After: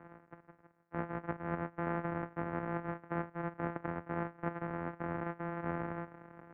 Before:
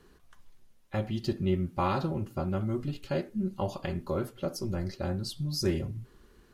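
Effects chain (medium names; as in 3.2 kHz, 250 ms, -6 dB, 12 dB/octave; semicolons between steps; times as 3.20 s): sorted samples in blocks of 256 samples; reverse; compression 4:1, threshold -43 dBFS, peak gain reduction 17.5 dB; reverse; mistuned SSB -350 Hz 380–2800 Hz; high-pass 150 Hz 6 dB/octave; formant shift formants -5 st; trim +13 dB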